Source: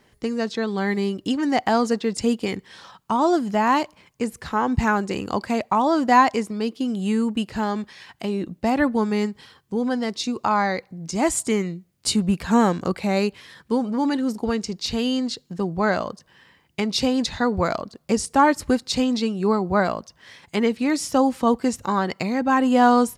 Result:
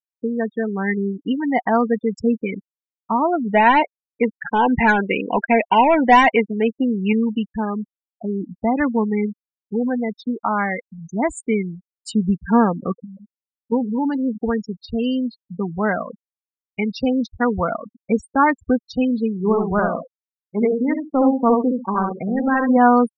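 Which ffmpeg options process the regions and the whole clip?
-filter_complex "[0:a]asettb=1/sr,asplit=3[s0][s1][s2];[s0]atrim=end=3.454[s3];[s1]atrim=start=3.45:end=7.13,asetpts=PTS-STARTPTS,afade=t=in:d=0.004:c=qsin,afade=t=out:st=3.676:d=0.004:c=qsin,asplit=2[s4][s5];[s5]highpass=f=720:p=1,volume=7.08,asoftclip=type=tanh:threshold=0.631[s6];[s4][s6]amix=inputs=2:normalize=0,lowpass=f=5700:p=1,volume=0.501,adynamicsmooth=sensitivity=2:basefreq=630,asuperstop=centerf=1200:order=4:qfactor=3.1[s7];[s2]atrim=start=7.126[s8];[s3][s7]acrossfade=d=0.004:c1=hsin:c2=qsin[s9];[s9][s8]acrossfade=d=0.004:c1=qsin:c2=hsin,asettb=1/sr,asplit=3[s10][s11][s12];[s10]atrim=end=13.044[s13];[s11]atrim=start=13.04:end=13.72,asetpts=PTS-STARTPTS,afade=t=in:d=0.004:c=qsin,afade=t=out:st=0.676:d=0.004:c=qsin,acompressor=threshold=0.02:ratio=16:attack=3.2:release=140:knee=1:detection=peak,asplit=2[s14][s15];[s15]adelay=16,volume=0.473[s16];[s14][s16]amix=inputs=2:normalize=0,atrim=end_sample=29988[s17];[s12]atrim=start=13.716[s18];[s13][s17]acrossfade=d=0.004:c1=hsin:c2=qsin[s19];[s19][s18]acrossfade=d=0.004:c1=qsin:c2=hsin,asettb=1/sr,asplit=3[s20][s21][s22];[s20]atrim=end=19.374[s23];[s21]atrim=start=19.37:end=22.77,asetpts=PTS-STARTPTS,afade=t=in:d=0.004:c=qsin,afade=t=out:st=3.396:d=0.004:c=qsin,adynamicsmooth=sensitivity=1:basefreq=790,asplit=2[s24][s25];[s25]adelay=67,lowpass=f=3200:p=1,volume=0.668,asplit=2[s26][s27];[s27]adelay=67,lowpass=f=3200:p=1,volume=0.27,asplit=2[s28][s29];[s29]adelay=67,lowpass=f=3200:p=1,volume=0.27,asplit=2[s30][s31];[s31]adelay=67,lowpass=f=3200:p=1,volume=0.27[s32];[s24][s26][s28][s30][s32]amix=inputs=5:normalize=0,atrim=end_sample=149940[s33];[s22]atrim=start=22.766[s34];[s23][s33]acrossfade=d=0.004:c1=hsin:c2=qsin[s35];[s35][s34]acrossfade=d=0.004:c1=qsin:c2=hsin,afftfilt=real='re*gte(hypot(re,im),0.112)':imag='im*gte(hypot(re,im),0.112)':win_size=1024:overlap=0.75,highshelf=f=3000:t=q:w=3:g=-7,aecho=1:1:4.3:0.35"

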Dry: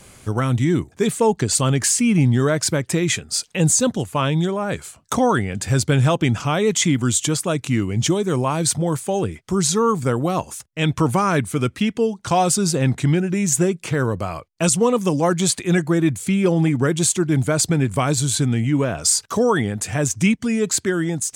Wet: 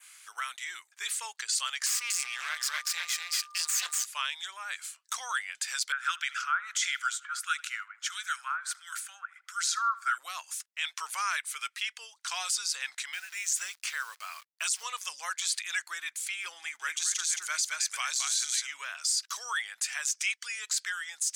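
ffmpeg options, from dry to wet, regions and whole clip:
-filter_complex "[0:a]asettb=1/sr,asplit=3[s0][s1][s2];[s0]atrim=end=1.864[s3];[s1]atrim=start=1.86:end=4.05,asetpts=PTS-STARTPTS,afade=t=in:d=0.004:c=qsin,afade=t=out:st=2.186:d=0.004:c=qsin,aecho=1:1:240:0.708,atrim=end_sample=96579,aeval=exprs='max(val(0),0)':c=same,aeval=exprs='val(0)+0.0126*sin(2*PI*1200*n/s)':c=same[s4];[s2]atrim=start=4.046[s5];[s3][s4]acrossfade=d=0.004:c1=hsin:c2=qsin[s6];[s6][s5]acrossfade=d=0.004:c1=qsin:c2=hsin,asettb=1/sr,asplit=3[s7][s8][s9];[s7]atrim=end=5.924[s10];[s8]atrim=start=5.92:end=10.18,asetpts=PTS-STARTPTS,afade=t=in:d=0.004:c=qsin,afade=t=out:st=4.256:d=0.004:c=qsin,acrossover=split=1400[s11][s12];[s11]aeval=exprs='val(0)*(1-1/2+1/2*cos(2*PI*1.5*n/s))':c=same[s13];[s12]aeval=exprs='val(0)*(1-1/2-1/2*cos(2*PI*1.5*n/s))':c=same[s14];[s13][s14]amix=inputs=2:normalize=0,highpass=f=1400:t=q:w=8.3,asplit=2[s15][s16];[s16]adelay=78,lowpass=f=3100:p=1,volume=0.0891,asplit=2[s17][s18];[s18]adelay=78,lowpass=f=3100:p=1,volume=0.51,asplit=2[s19][s20];[s20]adelay=78,lowpass=f=3100:p=1,volume=0.51,asplit=2[s21][s22];[s22]adelay=78,lowpass=f=3100:p=1,volume=0.51[s23];[s15][s17][s19][s21][s23]amix=inputs=5:normalize=0,atrim=end_sample=187866[s24];[s9]atrim=start=10.176[s25];[s10][s24]acrossfade=d=0.004:c1=hsin:c2=qsin[s26];[s26][s25]acrossfade=d=0.004:c1=qsin:c2=hsin,asettb=1/sr,asplit=3[s27][s28][s29];[s27]atrim=end=13.134[s30];[s28]atrim=start=13.13:end=14.83,asetpts=PTS-STARTPTS,afade=t=in:d=0.004:c=qsin,afade=t=out:st=1.696:d=0.004:c=qsin,highpass=400,acrusher=bits=8:dc=4:mix=0:aa=0.000001[s31];[s29]atrim=start=14.826[s32];[s30][s31]acrossfade=d=0.004:c1=hsin:c2=qsin[s33];[s33][s32]acrossfade=d=0.004:c1=qsin:c2=hsin,asettb=1/sr,asplit=3[s34][s35][s36];[s34]atrim=end=16.584[s37];[s35]atrim=start=16.58:end=18.74,asetpts=PTS-STARTPTS,afade=t=in:d=0.004:c=qsin,afade=t=out:st=2.156:d=0.004:c=qsin,equalizer=f=6200:w=5.1:g=7,aecho=1:1:218:0.596,atrim=end_sample=95256[s38];[s36]atrim=start=18.736[s39];[s37][s38]acrossfade=d=0.004:c1=hsin:c2=qsin[s40];[s40][s39]acrossfade=d=0.004:c1=qsin:c2=hsin,highpass=f=1400:w=0.5412,highpass=f=1400:w=1.3066,adynamicequalizer=threshold=0.0141:dfrequency=5000:dqfactor=1.7:tfrequency=5000:tqfactor=1.7:attack=5:release=100:ratio=0.375:range=3.5:mode=boostabove:tftype=bell,alimiter=limit=0.178:level=0:latency=1:release=17,volume=0.631"

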